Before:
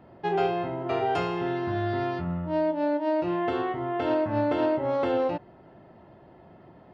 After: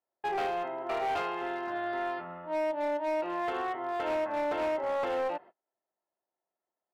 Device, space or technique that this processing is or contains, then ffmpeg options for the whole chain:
walkie-talkie: -af "highpass=580,lowpass=2.7k,asoftclip=type=hard:threshold=-27.5dB,agate=range=-35dB:threshold=-48dB:ratio=16:detection=peak"

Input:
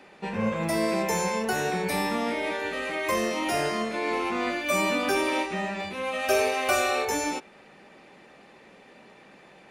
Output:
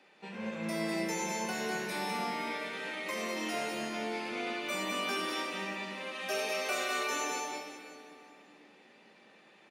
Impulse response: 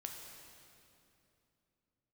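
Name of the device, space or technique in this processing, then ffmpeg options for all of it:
PA in a hall: -filter_complex "[0:a]highpass=f=160:w=0.5412,highpass=f=160:w=1.3066,equalizer=f=3.7k:t=o:w=2:g=6,aecho=1:1:200:0.596[a];[1:a]atrim=start_sample=2205[b];[a][b]afir=irnorm=-1:irlink=0,volume=-8.5dB"

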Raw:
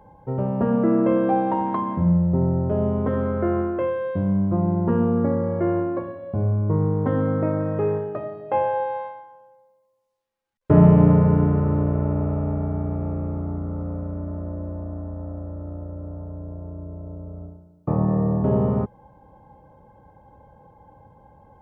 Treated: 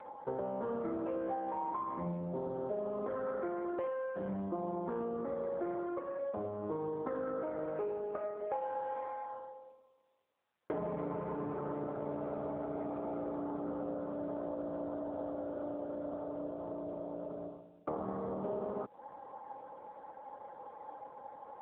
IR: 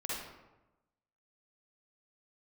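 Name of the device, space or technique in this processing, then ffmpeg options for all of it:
voicemail: -af "highpass=420,lowpass=2.6k,acompressor=threshold=-40dB:ratio=10,volume=6.5dB" -ar 8000 -c:a libopencore_amrnb -b:a 5900

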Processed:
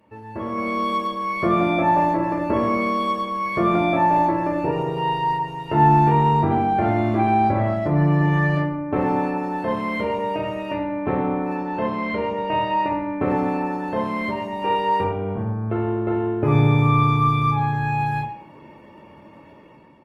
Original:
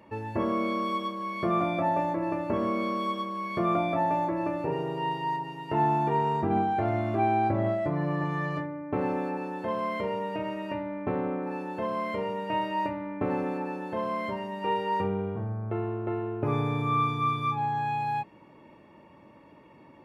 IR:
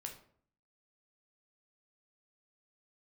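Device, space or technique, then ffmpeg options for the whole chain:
speakerphone in a meeting room: -filter_complex "[0:a]asettb=1/sr,asplit=3[a][b][c];[a]atrim=end=11.544[d];[b]atrim=start=11.54:end=12.91,asetpts=PTS-STARTPTS,afade=t=in:d=0.004:c=qsin,afade=t=out:st=1.366:d=0.004:c=qsin,lowpass=5k[e];[c]atrim=start=12.906[f];[d][e]acrossfade=d=0.004:c1=hsin:c2=qsin[g];[g][f]acrossfade=d=0.004:c1=qsin:c2=hsin[h];[1:a]atrim=start_sample=2205[i];[h][i]afir=irnorm=-1:irlink=0,asplit=2[j][k];[k]adelay=120,highpass=300,lowpass=3.4k,asoftclip=type=hard:threshold=-25dB,volume=-18dB[l];[j][l]amix=inputs=2:normalize=0,dynaudnorm=f=140:g=9:m=11dB" -ar 48000 -c:a libopus -b:a 24k

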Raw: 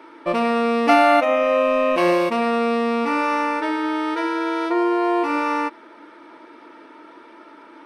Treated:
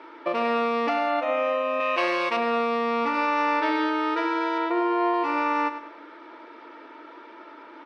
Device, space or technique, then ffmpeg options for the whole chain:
DJ mixer with the lows and highs turned down: -filter_complex "[0:a]acrossover=split=250 5700:gain=0.0794 1 0.0794[a][b][c];[a][b][c]amix=inputs=3:normalize=0,alimiter=limit=-16dB:level=0:latency=1:release=379,asettb=1/sr,asplit=3[d][e][f];[d]atrim=end=3.144[g];[e]atrim=start=3.14:end=3.9,asetpts=PTS-STARTPTS,afade=t=in:d=0.004:c=qsin,afade=t=out:st=0.756:d=0.004:c=qsin,equalizer=f=4.1k:t=o:w=0.99:g=4.5[h];[f]atrim=start=3.896[i];[g][h]acrossfade=d=0.004:c1=hsin:c2=qsin[j];[j][i]acrossfade=d=0.004:c1=qsin:c2=hsin,aecho=1:1:102|204|306|408:0.251|0.098|0.0382|0.0149,asettb=1/sr,asplit=3[k][l][m];[k]atrim=end=1.804[n];[l]atrim=start=1.8:end=2.37,asetpts=PTS-STARTPTS,afade=t=in:d=0.004:c=qsin,afade=t=out:st=0.566:d=0.004:c=qsin,tiltshelf=f=760:g=-6[o];[m]atrim=start=2.366[p];[n][o]acrossfade=d=0.004:c1=hsin:c2=qsin[q];[q][p]acrossfade=d=0.004:c1=qsin:c2=hsin,asettb=1/sr,asplit=3[r][s][t];[r]atrim=end=4.584[u];[s]atrim=start=4.58:end=5.14,asetpts=PTS-STARTPTS,afade=t=in:d=0.004:c=qsin,afade=t=out:st=0.556:d=0.004:c=qsin,acrossover=split=4100[v][w];[w]acompressor=threshold=-60dB:ratio=4:attack=1:release=60[x];[v][x]amix=inputs=2:normalize=0[y];[t]atrim=start=5.136[z];[u][y]acrossfade=d=0.004:c1=hsin:c2=qsin[aa];[aa][z]acrossfade=d=0.004:c1=qsin:c2=hsin"

